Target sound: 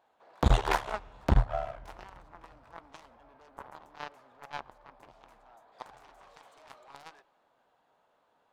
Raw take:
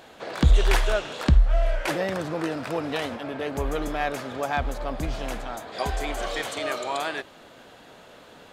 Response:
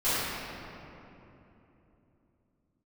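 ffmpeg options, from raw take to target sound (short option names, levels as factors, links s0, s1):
-filter_complex "[0:a]aeval=exprs='0.376*(cos(1*acos(clip(val(0)/0.376,-1,1)))-cos(1*PI/2))+0.133*(cos(3*acos(clip(val(0)/0.376,-1,1)))-cos(3*PI/2))':c=same,equalizer=f=910:w=1:g=14,asplit=2[s0][s1];[1:a]atrim=start_sample=2205[s2];[s1][s2]afir=irnorm=-1:irlink=0,volume=0.0126[s3];[s0][s3]amix=inputs=2:normalize=0,volume=0.501"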